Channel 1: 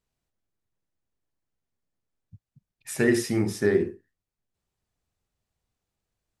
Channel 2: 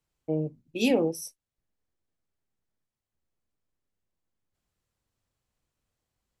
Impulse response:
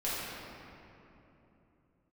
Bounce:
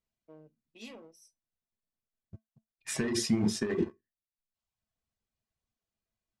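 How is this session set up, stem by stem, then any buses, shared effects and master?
+2.0 dB, 0.00 s, no send, reverb removal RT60 0.88 s; sample leveller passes 2; vocal rider
-14.5 dB, 0.00 s, no send, one diode to ground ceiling -23 dBFS; tilt +2.5 dB/oct; auto duck -20 dB, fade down 1.50 s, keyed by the first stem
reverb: off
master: LPF 6900 Hz 12 dB/oct; negative-ratio compressor -21 dBFS, ratio -1; resonator 220 Hz, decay 0.15 s, harmonics odd, mix 70%

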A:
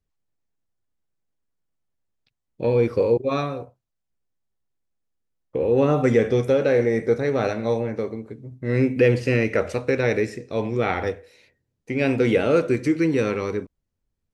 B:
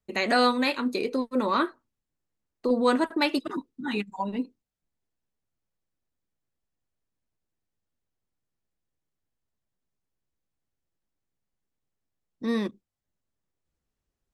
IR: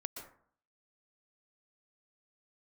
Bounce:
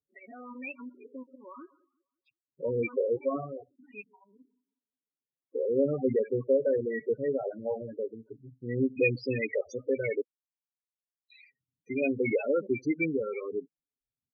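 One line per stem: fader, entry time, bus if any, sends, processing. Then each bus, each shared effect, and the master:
-4.5 dB, 0.00 s, muted 10.21–11.3, no send, no echo send, reverb removal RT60 0.53 s; HPF 310 Hz 6 dB/oct
-13.0 dB, 0.00 s, send -13 dB, echo send -23 dB, HPF 190 Hz 24 dB/oct; level quantiser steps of 15 dB; auto swell 0.174 s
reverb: on, RT60 0.55 s, pre-delay 0.113 s
echo: feedback echo 0.182 s, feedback 31%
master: comb 7.3 ms, depth 35%; loudest bins only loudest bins 8; resonant high shelf 1900 Hz +7 dB, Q 3

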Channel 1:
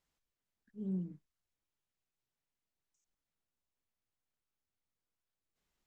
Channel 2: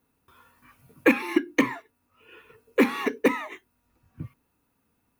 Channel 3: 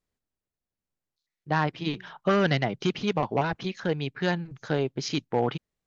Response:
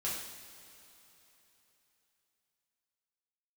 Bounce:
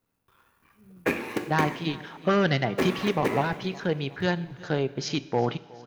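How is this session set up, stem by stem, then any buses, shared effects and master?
-15.5 dB, 0.00 s, no send, no echo send, dry
-8.0 dB, 0.00 s, send -5 dB, no echo send, cycle switcher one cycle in 3, muted
-0.5 dB, 0.00 s, send -17 dB, echo send -20.5 dB, dry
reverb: on, pre-delay 3 ms
echo: feedback echo 0.366 s, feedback 49%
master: dry

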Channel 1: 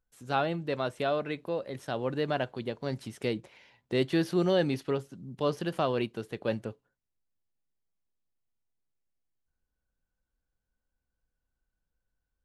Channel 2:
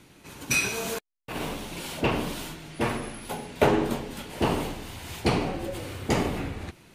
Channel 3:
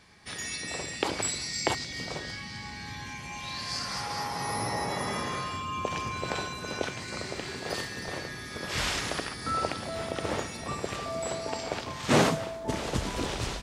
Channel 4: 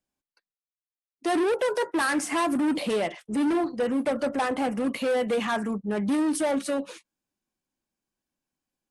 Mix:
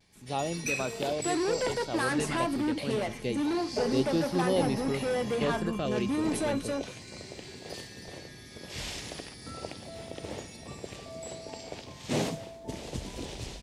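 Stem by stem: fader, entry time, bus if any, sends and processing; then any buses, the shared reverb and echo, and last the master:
-1.5 dB, 0.00 s, no send, stepped notch 3.8 Hz 630–3000 Hz
-4.0 dB, 0.15 s, no send, formant sharpening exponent 1.5; comb 4.7 ms, depth 84%; auto duck -11 dB, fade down 1.20 s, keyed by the first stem
-6.0 dB, 0.00 s, no send, bell 1300 Hz -11.5 dB 1 oct
-5.5 dB, 0.00 s, no send, dry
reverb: off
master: vibrato 0.34 Hz 15 cents

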